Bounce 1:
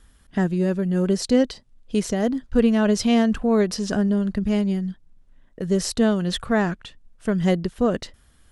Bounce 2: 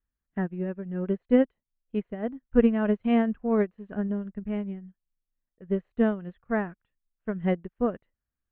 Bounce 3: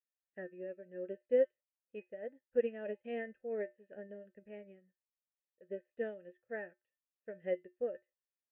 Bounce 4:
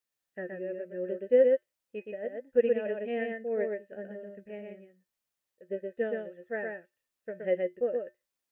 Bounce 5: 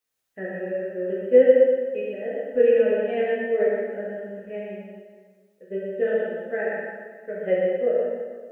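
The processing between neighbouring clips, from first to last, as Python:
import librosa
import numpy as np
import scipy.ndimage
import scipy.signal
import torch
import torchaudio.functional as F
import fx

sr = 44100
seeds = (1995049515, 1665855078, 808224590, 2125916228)

y1 = scipy.signal.sosfilt(scipy.signal.cheby2(4, 40, 4800.0, 'lowpass', fs=sr, output='sos'), x)
y1 = fx.upward_expand(y1, sr, threshold_db=-35.0, expansion=2.5)
y2 = fx.vowel_filter(y1, sr, vowel='e')
y2 = fx.comb_fb(y2, sr, f0_hz=120.0, decay_s=0.18, harmonics='odd', damping=0.0, mix_pct=70)
y2 = y2 * librosa.db_to_amplitude(6.5)
y3 = y2 + 10.0 ** (-3.5 / 20.0) * np.pad(y2, (int(121 * sr / 1000.0), 0))[:len(y2)]
y3 = y3 * librosa.db_to_amplitude(7.0)
y4 = fx.rev_plate(y3, sr, seeds[0], rt60_s=1.5, hf_ratio=0.85, predelay_ms=0, drr_db=-6.0)
y4 = y4 * librosa.db_to_amplitude(1.5)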